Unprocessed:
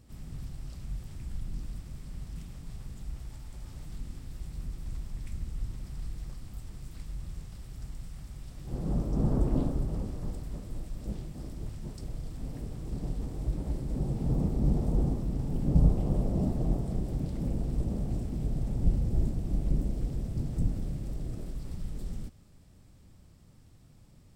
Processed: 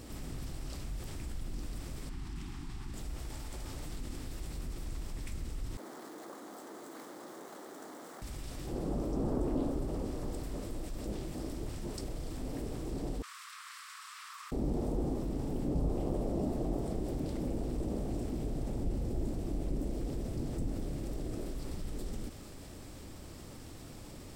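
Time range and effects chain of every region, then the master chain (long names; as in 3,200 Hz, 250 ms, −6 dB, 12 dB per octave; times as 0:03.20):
0:02.09–0:02.94: Chebyshev band-stop filter 350–840 Hz + high-shelf EQ 7,100 Hz −11.5 dB
0:05.77–0:08.22: running median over 9 samples + Bessel high-pass filter 400 Hz, order 6 + parametric band 2,600 Hz −14.5 dB 0.75 octaves
0:13.22–0:14.52: Butterworth high-pass 1,100 Hz 96 dB per octave + spectral tilt −3 dB per octave
whole clip: low shelf with overshoot 230 Hz −7.5 dB, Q 1.5; envelope flattener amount 50%; level −4 dB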